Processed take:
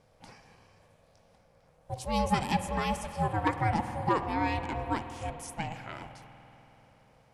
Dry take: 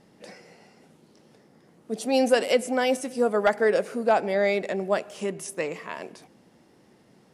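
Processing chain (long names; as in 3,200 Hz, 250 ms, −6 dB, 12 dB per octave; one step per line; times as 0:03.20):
ring modulation 320 Hz
spring reverb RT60 4 s, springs 48 ms, chirp 25 ms, DRR 9 dB
level −4 dB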